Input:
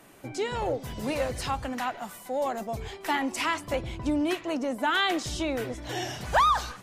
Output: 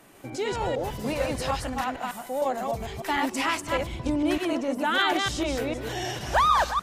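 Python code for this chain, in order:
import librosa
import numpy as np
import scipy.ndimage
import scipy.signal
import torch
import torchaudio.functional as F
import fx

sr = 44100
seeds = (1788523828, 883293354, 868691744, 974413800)

y = fx.reverse_delay(x, sr, ms=151, wet_db=-2.0)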